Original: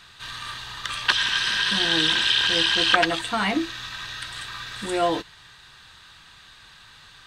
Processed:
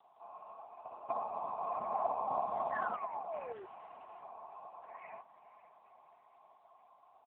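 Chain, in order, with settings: four frequency bands reordered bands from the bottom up 3142; echo that smears into a reverb 482 ms, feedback 59%, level -14 dB; 0.86–1.55 s: whistle 590 Hz -45 dBFS; cascade formant filter a; vibrato 15 Hz 51 cents; 2.71–3.66 s: painted sound fall 360–1900 Hz -43 dBFS; comb 4.7 ms, depth 43%; 2.46–2.96 s: companded quantiser 6-bit; 3.52–4.23 s: valve stage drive 45 dB, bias 0.3; AMR-NB 6.7 kbps 8 kHz

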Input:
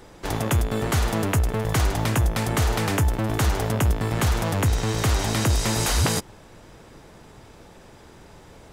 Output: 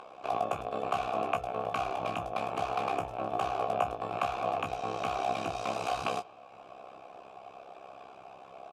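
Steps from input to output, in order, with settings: upward compressor, threshold -33 dBFS; AM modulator 66 Hz, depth 90%; vowel filter a; early reflections 18 ms -6.5 dB, 28 ms -12 dB; reverberation RT60 1.7 s, pre-delay 43 ms, DRR 23 dB; trim +8.5 dB

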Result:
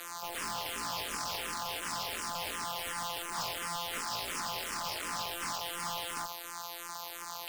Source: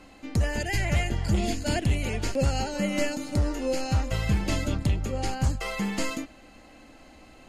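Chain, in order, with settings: sorted samples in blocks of 256 samples; Chebyshev band-pass 980–7900 Hz, order 3; spectral gate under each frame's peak -25 dB strong; peaking EQ 5.2 kHz +13.5 dB 0.89 oct; peak limiter -19 dBFS, peak gain reduction 10 dB; sine folder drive 20 dB, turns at -28.5 dBFS; barber-pole phaser -2.8 Hz

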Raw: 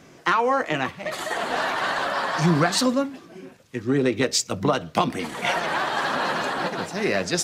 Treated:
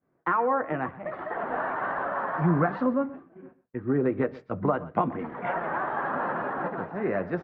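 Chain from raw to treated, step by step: low-pass 1.6 kHz 24 dB/octave; expander -37 dBFS; delay 126 ms -18.5 dB; trim -3.5 dB

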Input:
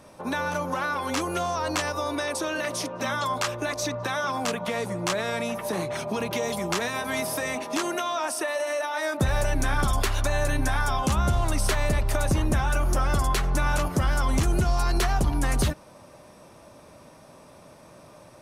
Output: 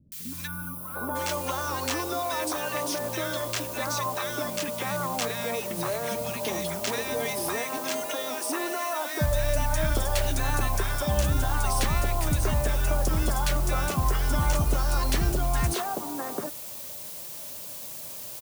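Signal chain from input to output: added noise blue -38 dBFS; three bands offset in time lows, highs, mids 120/760 ms, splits 240/1500 Hz; time-frequency box 0.47–1.16 s, 1.5–9.2 kHz -18 dB; trim -1 dB

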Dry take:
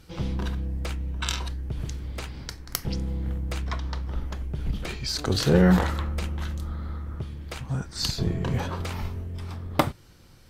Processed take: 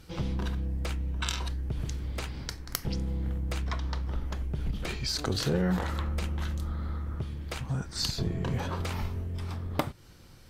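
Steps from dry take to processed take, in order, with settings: compression 2.5:1, threshold -28 dBFS, peak gain reduction 10 dB

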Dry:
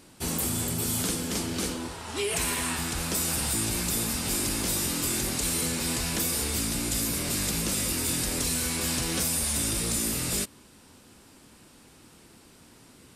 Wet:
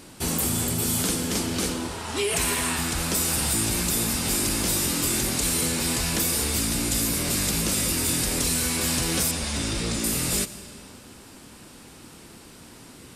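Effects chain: algorithmic reverb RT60 1.8 s, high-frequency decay 0.9×, pre-delay 50 ms, DRR 14 dB; in parallel at -2.5 dB: compression, threshold -42 dBFS, peak gain reduction 16.5 dB; 9.31–10.04 s: on the sum: low-pass 5.7 kHz 12 dB/octave; trim +2.5 dB

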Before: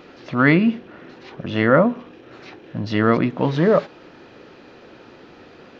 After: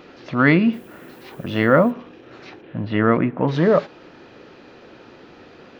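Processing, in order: 0.72–1.90 s: added noise violet -56 dBFS; 2.61–3.47 s: low-pass 3.7 kHz -> 2.1 kHz 24 dB/octave

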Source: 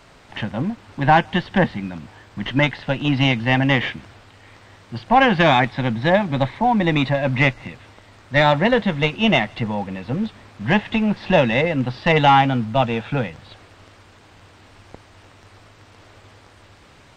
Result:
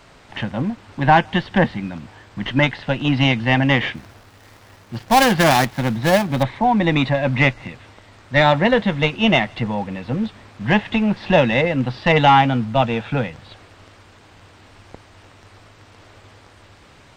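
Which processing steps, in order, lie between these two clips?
3.95–6.43 s: dead-time distortion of 0.17 ms; trim +1 dB

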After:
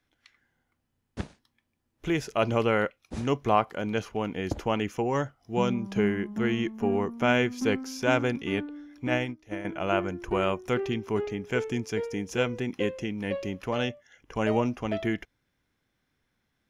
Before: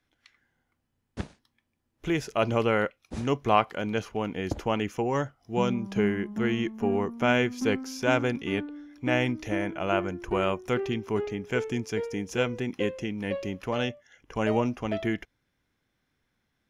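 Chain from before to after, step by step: 3.43–3.93 s: dynamic bell 2.8 kHz, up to -6 dB, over -37 dBFS, Q 0.77; 9.07–9.65 s: upward expansion 2.5:1, over -36 dBFS

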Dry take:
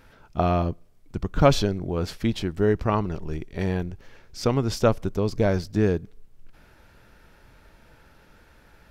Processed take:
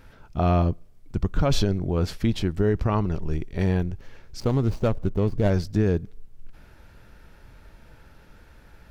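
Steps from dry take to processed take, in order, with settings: 4.40–5.50 s: median filter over 25 samples; bass shelf 170 Hz +6.5 dB; peak limiter -11.5 dBFS, peak gain reduction 9.5 dB

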